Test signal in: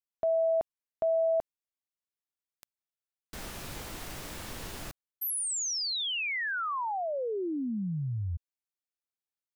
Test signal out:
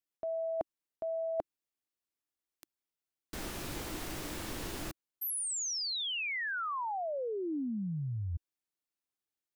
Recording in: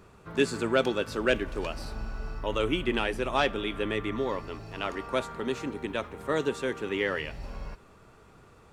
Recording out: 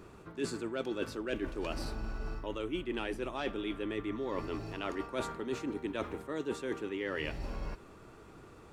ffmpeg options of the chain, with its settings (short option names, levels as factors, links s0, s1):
-af "equalizer=f=320:t=o:w=0.55:g=7.5,areverse,acompressor=threshold=0.02:ratio=10:attack=24:release=275:knee=1:detection=peak,areverse"